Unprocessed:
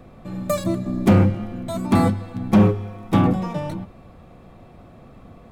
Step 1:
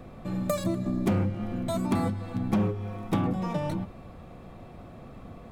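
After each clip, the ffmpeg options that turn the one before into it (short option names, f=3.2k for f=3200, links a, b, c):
-af "acompressor=threshold=-25dB:ratio=4"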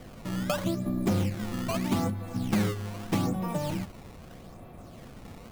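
-af "acrusher=samples=16:mix=1:aa=0.000001:lfo=1:lforange=25.6:lforate=0.8,volume=-1dB"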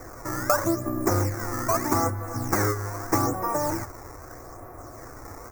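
-af "firequalizer=gain_entry='entry(120,0);entry(180,-19);entry(300,4);entry(530,2);entry(1200,9);entry(2000,3);entry(3000,-26);entry(5600,9);entry(11000,3);entry(16000,14)':delay=0.05:min_phase=1,volume=3.5dB"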